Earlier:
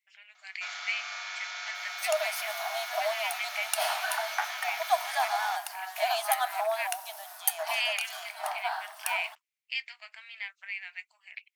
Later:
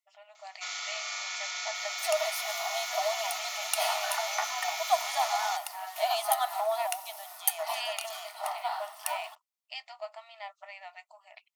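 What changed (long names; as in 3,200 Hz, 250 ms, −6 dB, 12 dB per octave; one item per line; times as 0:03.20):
speech: remove high-pass with resonance 2,200 Hz, resonance Q 4.3
first sound: remove high-frequency loss of the air 130 metres
master: add Butterworth band-reject 1,600 Hz, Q 5.4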